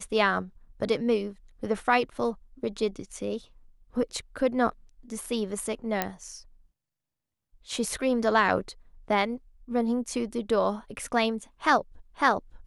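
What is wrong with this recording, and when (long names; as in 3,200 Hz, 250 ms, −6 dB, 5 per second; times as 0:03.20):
0:06.02: click −10 dBFS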